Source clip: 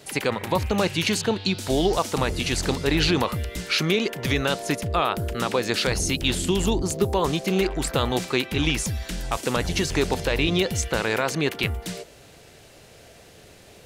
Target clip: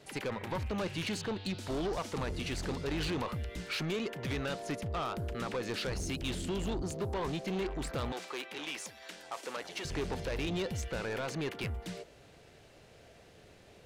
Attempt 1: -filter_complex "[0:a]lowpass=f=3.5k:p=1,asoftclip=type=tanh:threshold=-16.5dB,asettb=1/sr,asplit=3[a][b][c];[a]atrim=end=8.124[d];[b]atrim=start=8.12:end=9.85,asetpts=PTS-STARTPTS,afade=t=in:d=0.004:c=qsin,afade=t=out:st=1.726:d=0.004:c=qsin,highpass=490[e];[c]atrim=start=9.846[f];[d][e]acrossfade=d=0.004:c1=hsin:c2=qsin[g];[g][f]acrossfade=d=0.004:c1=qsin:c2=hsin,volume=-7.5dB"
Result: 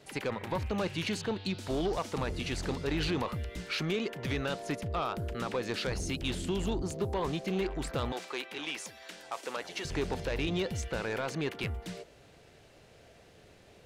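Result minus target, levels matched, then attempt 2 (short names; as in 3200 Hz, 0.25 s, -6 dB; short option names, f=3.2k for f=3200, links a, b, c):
soft clip: distortion -6 dB
-filter_complex "[0:a]lowpass=f=3.5k:p=1,asoftclip=type=tanh:threshold=-22.5dB,asettb=1/sr,asplit=3[a][b][c];[a]atrim=end=8.124[d];[b]atrim=start=8.12:end=9.85,asetpts=PTS-STARTPTS,afade=t=in:d=0.004:c=qsin,afade=t=out:st=1.726:d=0.004:c=qsin,highpass=490[e];[c]atrim=start=9.846[f];[d][e]acrossfade=d=0.004:c1=hsin:c2=qsin[g];[g][f]acrossfade=d=0.004:c1=qsin:c2=hsin,volume=-7.5dB"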